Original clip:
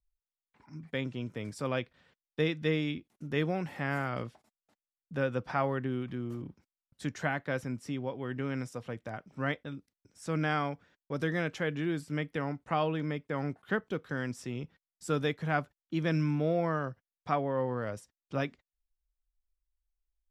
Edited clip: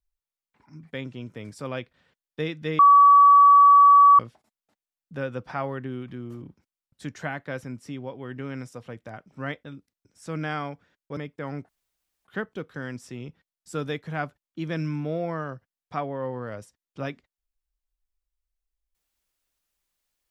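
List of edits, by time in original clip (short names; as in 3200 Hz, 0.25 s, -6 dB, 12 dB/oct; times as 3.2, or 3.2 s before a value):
2.79–4.19 bleep 1140 Hz -10 dBFS
11.17–13.08 cut
13.6 insert room tone 0.56 s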